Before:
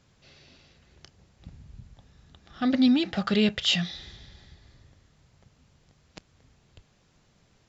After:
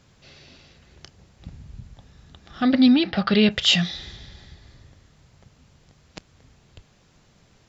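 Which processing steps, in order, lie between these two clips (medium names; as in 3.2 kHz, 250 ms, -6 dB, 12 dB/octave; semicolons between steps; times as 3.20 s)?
2.62–3.51 s: Chebyshev low-pass 4.9 kHz, order 4; trim +6 dB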